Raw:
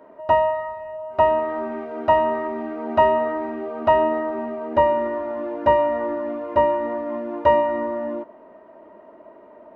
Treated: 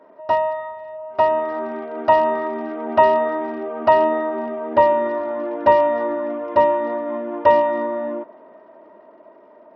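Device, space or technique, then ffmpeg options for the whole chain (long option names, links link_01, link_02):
Bluetooth headset: -af "highpass=frequency=210:poles=1,dynaudnorm=framelen=220:gausssize=13:maxgain=13.5dB,aresample=16000,aresample=44100,volume=-1dB" -ar 44100 -c:a sbc -b:a 64k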